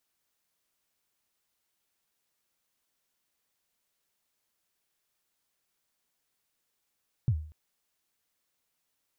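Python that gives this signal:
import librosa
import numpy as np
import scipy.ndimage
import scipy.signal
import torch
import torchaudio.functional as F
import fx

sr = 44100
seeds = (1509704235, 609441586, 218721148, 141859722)

y = fx.drum_kick(sr, seeds[0], length_s=0.24, level_db=-19.0, start_hz=140.0, end_hz=77.0, sweep_ms=67.0, decay_s=0.47, click=False)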